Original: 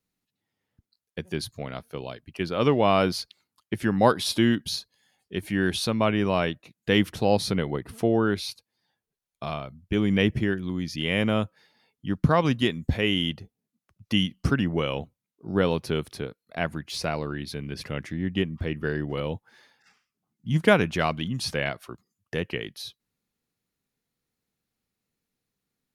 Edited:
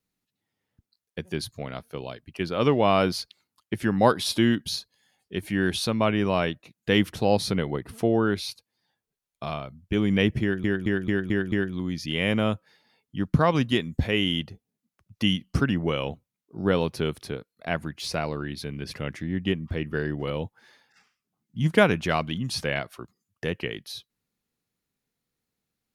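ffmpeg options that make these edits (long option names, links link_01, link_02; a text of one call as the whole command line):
ffmpeg -i in.wav -filter_complex "[0:a]asplit=6[link_01][link_02][link_03][link_04][link_05][link_06];[link_01]atrim=end=10.642[link_07];[link_02]atrim=start=10.418:end=10.642[link_08];[link_03]atrim=start=10.418:end=10.642[link_09];[link_04]atrim=start=10.418:end=10.642[link_10];[link_05]atrim=start=10.418:end=10.642[link_11];[link_06]atrim=start=10.418[link_12];[link_07][link_08]acrossfade=duration=0.004:curve1=hsin:curve2=hsin[link_13];[link_13][link_09]acrossfade=duration=0.004:curve1=hsin:curve2=hsin[link_14];[link_14][link_10]acrossfade=duration=0.004:curve1=hsin:curve2=hsin[link_15];[link_15][link_11]acrossfade=duration=0.004:curve1=hsin:curve2=hsin[link_16];[link_16][link_12]acrossfade=duration=0.004:curve1=hsin:curve2=hsin" out.wav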